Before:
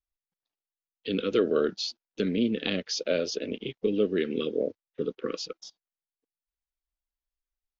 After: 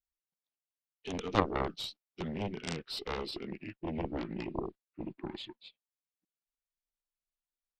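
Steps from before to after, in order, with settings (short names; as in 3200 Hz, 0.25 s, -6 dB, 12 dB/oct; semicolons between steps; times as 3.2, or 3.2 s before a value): gliding pitch shift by -8.5 st starting unshifted; added harmonics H 2 -11 dB, 3 -6 dB, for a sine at -12.5 dBFS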